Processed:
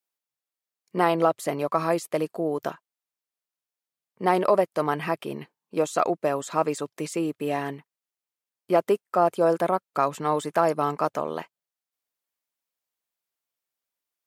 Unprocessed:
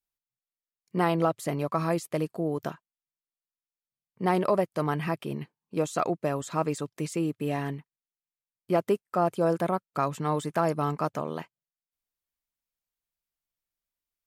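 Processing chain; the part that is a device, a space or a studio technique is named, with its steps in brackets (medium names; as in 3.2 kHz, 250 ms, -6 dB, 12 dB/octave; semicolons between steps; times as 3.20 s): filter by subtraction (in parallel: low-pass 540 Hz 12 dB/octave + polarity flip); on the sum: trim +3 dB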